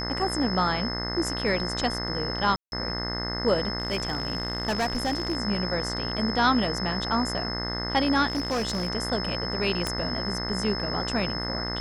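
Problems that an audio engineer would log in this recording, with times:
mains buzz 60 Hz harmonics 35 −33 dBFS
whistle 5,200 Hz −32 dBFS
0:02.56–0:02.72: drop-out 161 ms
0:03.78–0:05.37: clipping −21.5 dBFS
0:08.27–0:08.90: clipping −23 dBFS
0:09.87: click −13 dBFS

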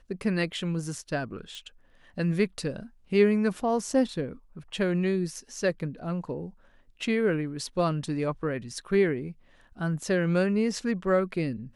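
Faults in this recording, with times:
0:01.55: click

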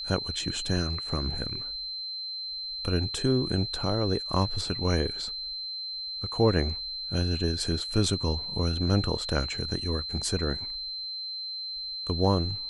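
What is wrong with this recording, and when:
whistle 4,100 Hz −33 dBFS

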